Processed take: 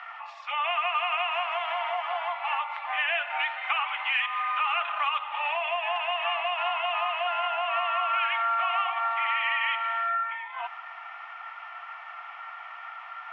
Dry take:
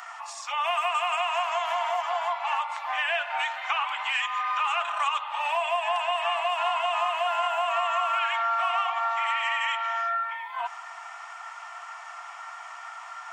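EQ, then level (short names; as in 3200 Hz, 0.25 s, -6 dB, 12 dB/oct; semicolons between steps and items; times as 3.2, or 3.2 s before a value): speaker cabinet 470–2900 Hz, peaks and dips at 670 Hz -5 dB, 1000 Hz -8 dB, 1600 Hz -5 dB; +3.5 dB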